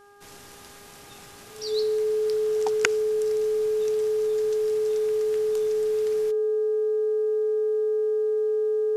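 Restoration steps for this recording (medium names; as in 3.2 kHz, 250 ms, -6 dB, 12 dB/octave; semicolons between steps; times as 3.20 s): de-hum 406.1 Hz, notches 4; band-stop 430 Hz, Q 30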